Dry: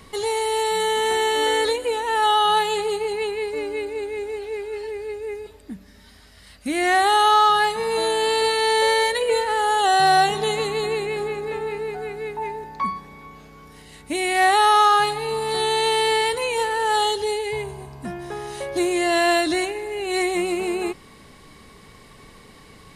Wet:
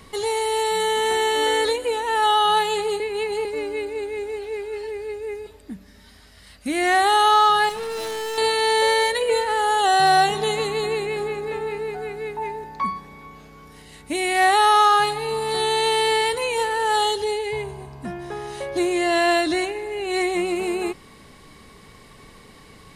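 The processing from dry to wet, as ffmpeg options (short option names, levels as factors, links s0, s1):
-filter_complex "[0:a]asettb=1/sr,asplit=3[s0][s1][s2];[s0]atrim=end=7.694[s3];[s1]atrim=start=7.69:end=8.38,asetpts=PTS-STARTPTS,afade=t=in:d=0.004:c=qsin,afade=t=out:st=0.686:d=0.004:c=qsin,volume=22.4,asoftclip=hard,volume=0.0447[s4];[s2]atrim=start=8.376[s5];[s3][s4]acrossfade=d=0.004:c1=hsin:c2=qsin[s6];[s6][s5]acrossfade=d=0.004:c1=qsin:c2=hsin,asettb=1/sr,asplit=3[s7][s8][s9];[s7]atrim=end=17.244[s10];[s8]atrim=start=17.24:end=20.56,asetpts=PTS-STARTPTS,afade=t=in:d=0.004:c=qsin,afade=t=out:st=3.316:d=0.004:c=qsin,highshelf=f=7600:g=-6[s11];[s9]atrim=start=20.556[s12];[s10][s11]acrossfade=d=0.004:c1=hsin:c2=qsin[s13];[s13][s12]acrossfade=d=0.004:c1=qsin:c2=hsin,asplit=3[s14][s15][s16];[s14]atrim=end=3.002[s17];[s15]atrim=start=2.998:end=3.452,asetpts=PTS-STARTPTS,areverse[s18];[s16]atrim=start=3.448[s19];[s17][s18]acrossfade=d=0.004:c1=hsin:c2=hsin[s20];[s20][s19]acrossfade=d=0.004:c1=hsin:c2=hsin"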